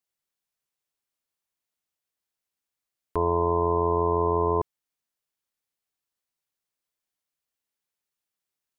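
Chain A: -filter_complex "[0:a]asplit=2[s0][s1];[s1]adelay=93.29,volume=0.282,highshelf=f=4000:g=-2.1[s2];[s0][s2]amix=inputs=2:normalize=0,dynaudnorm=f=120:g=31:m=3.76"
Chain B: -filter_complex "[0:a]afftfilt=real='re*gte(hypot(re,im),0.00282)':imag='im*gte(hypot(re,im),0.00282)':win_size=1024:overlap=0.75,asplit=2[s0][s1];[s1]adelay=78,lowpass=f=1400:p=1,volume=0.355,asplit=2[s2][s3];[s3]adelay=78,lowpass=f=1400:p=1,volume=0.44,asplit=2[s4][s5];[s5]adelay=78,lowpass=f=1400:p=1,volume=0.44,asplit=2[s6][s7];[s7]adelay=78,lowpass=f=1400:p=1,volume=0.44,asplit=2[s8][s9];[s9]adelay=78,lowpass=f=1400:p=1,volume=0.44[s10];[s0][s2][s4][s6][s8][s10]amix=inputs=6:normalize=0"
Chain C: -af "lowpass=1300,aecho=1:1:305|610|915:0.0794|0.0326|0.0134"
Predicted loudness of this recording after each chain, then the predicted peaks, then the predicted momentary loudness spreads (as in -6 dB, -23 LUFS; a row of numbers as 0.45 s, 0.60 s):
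-13.0 LUFS, -26.0 LUFS, -25.0 LUFS; -2.5 dBFS, -14.0 dBFS, -14.0 dBFS; 7 LU, 6 LU, 6 LU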